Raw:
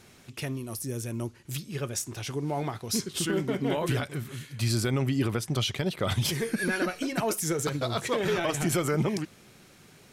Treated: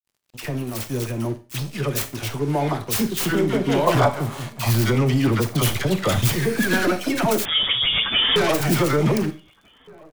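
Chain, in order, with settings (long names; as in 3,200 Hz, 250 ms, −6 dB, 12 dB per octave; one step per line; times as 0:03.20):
stylus tracing distortion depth 0.45 ms
all-pass dispersion lows, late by 61 ms, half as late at 910 Hz
dead-zone distortion −47 dBFS
convolution reverb RT60 0.35 s, pre-delay 28 ms, DRR 11 dB
soft clipping −21 dBFS, distortion −18 dB
0:03.87–0:04.71: flat-topped bell 840 Hz +12.5 dB 1.3 octaves
0:07.45–0:08.36: voice inversion scrambler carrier 3,500 Hz
slap from a distant wall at 260 metres, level −24 dB
automatic gain control gain up to 5 dB
level +5 dB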